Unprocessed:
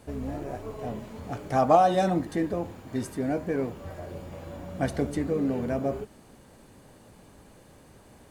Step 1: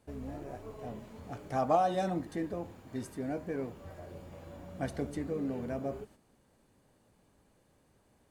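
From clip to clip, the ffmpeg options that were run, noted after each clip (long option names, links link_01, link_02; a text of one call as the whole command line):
ffmpeg -i in.wav -af "agate=range=-7dB:threshold=-47dB:ratio=16:detection=peak,volume=-8dB" out.wav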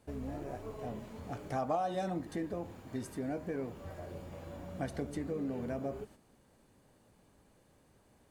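ffmpeg -i in.wav -af "acompressor=threshold=-38dB:ratio=2,volume=2dB" out.wav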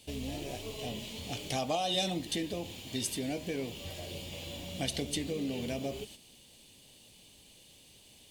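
ffmpeg -i in.wav -af "highshelf=frequency=2100:width_type=q:width=3:gain=13.5,volume=2dB" out.wav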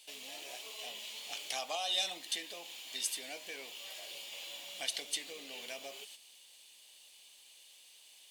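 ffmpeg -i in.wav -af "highpass=1000" out.wav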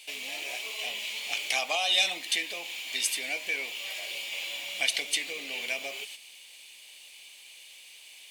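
ffmpeg -i in.wav -af "equalizer=frequency=2300:width_type=o:width=0.47:gain=11,volume=6.5dB" out.wav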